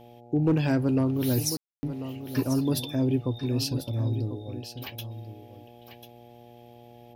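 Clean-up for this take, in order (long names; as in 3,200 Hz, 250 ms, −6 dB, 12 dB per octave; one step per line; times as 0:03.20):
clipped peaks rebuilt −16 dBFS
hum removal 119.3 Hz, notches 7
ambience match 0:01.57–0:01.83
echo removal 1,043 ms −11.5 dB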